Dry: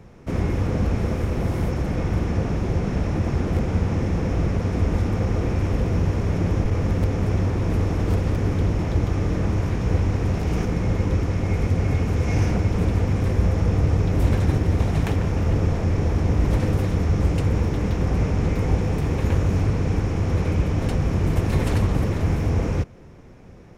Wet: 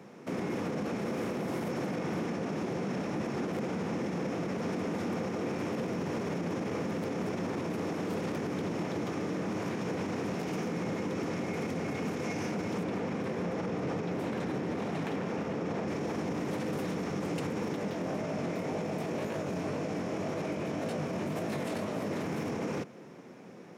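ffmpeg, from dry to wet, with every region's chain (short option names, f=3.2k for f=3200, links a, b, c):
-filter_complex "[0:a]asettb=1/sr,asplit=3[a][b][c];[a]atrim=end=12.834[d];[b]atrim=start=12.83:end=15.88,asetpts=PTS-STARTPTS,afade=t=in:d=0.004:c=qsin,afade=t=out:st=3.046:d=0.004:c=qsin,lowpass=f=3.7k:p=1,bandreject=f=50:t=h:w=6,bandreject=f=100:t=h:w=6,bandreject=f=150:t=h:w=6,bandreject=f=200:t=h:w=6,bandreject=f=250:t=h:w=6,bandreject=f=300:t=h:w=6,bandreject=f=350:t=h:w=6[e];[c]atrim=start=15.876[f];[d][e]acrossfade=d=0.004:c1=hsin:c2=qsin[g];[g][f]acrossfade=d=0.004:c1=qsin:c2=hsin,asettb=1/sr,asplit=3[h][i][j];[h]atrim=end=17.764[k];[i]atrim=start=17.76:end=22.16,asetpts=PTS-STARTPTS,afade=t=in:d=0.004:c=qsin,afade=t=out:st=4.396:d=0.004:c=qsin,flanger=delay=18:depth=5:speed=1.9,equalizer=f=630:w=6.1:g=9.5[l];[j]atrim=start=22.156[m];[k][l]acrossfade=d=0.004:c1=hsin:c2=qsin[n];[n][m]acrossfade=d=0.004:c1=qsin:c2=hsin,highpass=f=180:w=0.5412,highpass=f=180:w=1.3066,alimiter=level_in=2dB:limit=-24dB:level=0:latency=1:release=50,volume=-2dB"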